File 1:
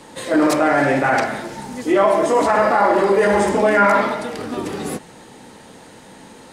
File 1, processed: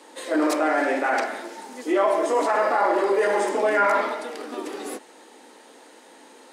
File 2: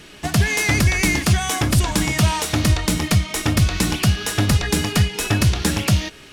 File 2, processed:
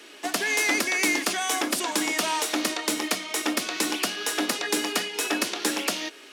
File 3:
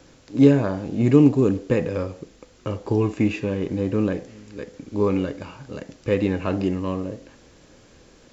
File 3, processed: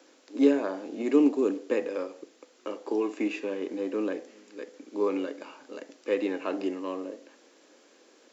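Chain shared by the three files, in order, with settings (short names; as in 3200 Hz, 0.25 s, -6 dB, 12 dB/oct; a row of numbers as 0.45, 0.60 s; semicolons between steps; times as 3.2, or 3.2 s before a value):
steep high-pass 270 Hz 36 dB/oct; normalise peaks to -9 dBFS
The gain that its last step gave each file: -5.5, -3.0, -5.0 dB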